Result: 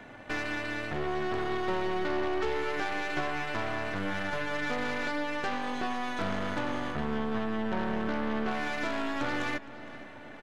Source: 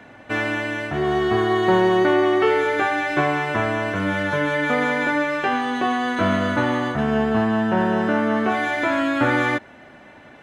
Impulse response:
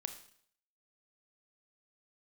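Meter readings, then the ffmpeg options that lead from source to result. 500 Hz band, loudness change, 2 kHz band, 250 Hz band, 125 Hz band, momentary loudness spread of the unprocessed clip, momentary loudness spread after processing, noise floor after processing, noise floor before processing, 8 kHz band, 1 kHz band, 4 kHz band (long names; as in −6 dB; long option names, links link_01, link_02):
−13.0 dB, −12.0 dB, −11.0 dB, −12.5 dB, −12.5 dB, 6 LU, 3 LU, −46 dBFS, −46 dBFS, can't be measured, −11.5 dB, −8.5 dB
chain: -filter_complex "[0:a]acompressor=threshold=-35dB:ratio=2,aeval=exprs='0.126*(cos(1*acos(clip(val(0)/0.126,-1,1)))-cos(1*PI/2))+0.0224*(cos(6*acos(clip(val(0)/0.126,-1,1)))-cos(6*PI/2))':channel_layout=same,asplit=2[link_01][link_02];[link_02]adelay=464,lowpass=frequency=5000:poles=1,volume=-16dB,asplit=2[link_03][link_04];[link_04]adelay=464,lowpass=frequency=5000:poles=1,volume=0.54,asplit=2[link_05][link_06];[link_06]adelay=464,lowpass=frequency=5000:poles=1,volume=0.54,asplit=2[link_07][link_08];[link_08]adelay=464,lowpass=frequency=5000:poles=1,volume=0.54,asplit=2[link_09][link_10];[link_10]adelay=464,lowpass=frequency=5000:poles=1,volume=0.54[link_11];[link_01][link_03][link_05][link_07][link_09][link_11]amix=inputs=6:normalize=0,volume=-3.5dB"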